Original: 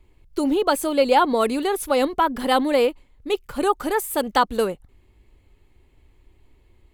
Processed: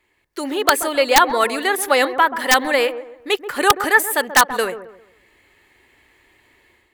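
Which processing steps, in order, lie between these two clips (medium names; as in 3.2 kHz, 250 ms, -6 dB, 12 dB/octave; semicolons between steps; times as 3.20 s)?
high-pass 870 Hz 6 dB/octave; peaking EQ 1.8 kHz +11.5 dB 0.43 oct; level rider gain up to 9.5 dB; integer overflow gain 3.5 dB; on a send: feedback echo behind a low-pass 133 ms, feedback 33%, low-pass 1.1 kHz, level -10.5 dB; on the sum: trim +2 dB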